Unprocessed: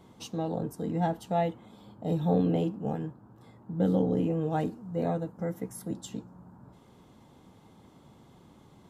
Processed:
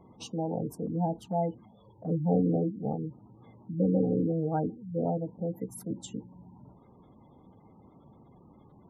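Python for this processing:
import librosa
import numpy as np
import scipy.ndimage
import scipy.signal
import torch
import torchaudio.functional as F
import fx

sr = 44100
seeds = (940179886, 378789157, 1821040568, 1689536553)

y = fx.spec_gate(x, sr, threshold_db=-20, keep='strong')
y = fx.env_flanger(y, sr, rest_ms=2.7, full_db=-25.5, at=(0.86, 2.32))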